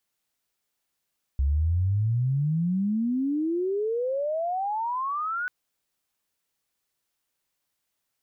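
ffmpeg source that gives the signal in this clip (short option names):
-f lavfi -i "aevalsrc='pow(10,(-20-6.5*t/4.09)/20)*sin(2*PI*66*4.09/log(1500/66)*(exp(log(1500/66)*t/4.09)-1))':d=4.09:s=44100"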